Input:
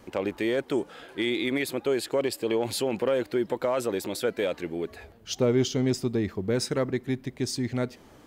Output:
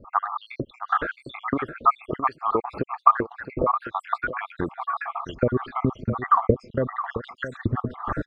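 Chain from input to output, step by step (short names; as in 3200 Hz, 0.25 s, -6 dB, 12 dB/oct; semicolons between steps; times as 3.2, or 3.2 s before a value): random spectral dropouts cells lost 75%; recorder AGC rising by 65 dB/s; synth low-pass 1200 Hz, resonance Q 10; low shelf 120 Hz +10 dB; echo 0.666 s -11.5 dB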